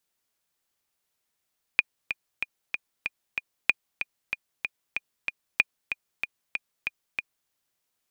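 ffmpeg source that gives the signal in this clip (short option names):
-f lavfi -i "aevalsrc='pow(10,(-5-9.5*gte(mod(t,6*60/189),60/189))/20)*sin(2*PI*2440*mod(t,60/189))*exp(-6.91*mod(t,60/189)/0.03)':d=5.71:s=44100"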